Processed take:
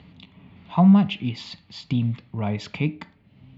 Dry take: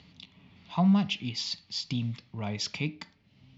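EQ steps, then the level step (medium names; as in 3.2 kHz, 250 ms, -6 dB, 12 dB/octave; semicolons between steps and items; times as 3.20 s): treble shelf 2.1 kHz -7.5 dB; peaking EQ 5.6 kHz -14.5 dB 0.7 oct; +8.5 dB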